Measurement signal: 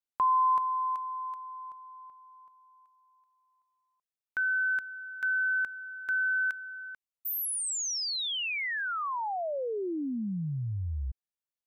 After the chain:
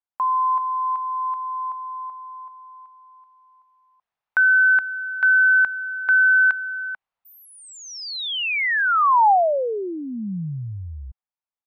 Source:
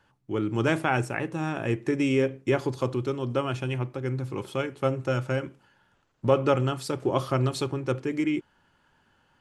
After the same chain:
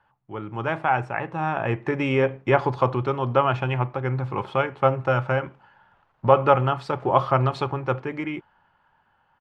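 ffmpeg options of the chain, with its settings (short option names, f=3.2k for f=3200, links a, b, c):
-af "dynaudnorm=f=160:g=17:m=13.5dB,firequalizer=gain_entry='entry(180,0);entry(280,-6);entry(810,10);entry(1500,4);entry(6800,-17);entry(11000,-25)':delay=0.05:min_phase=1,volume=-4.5dB"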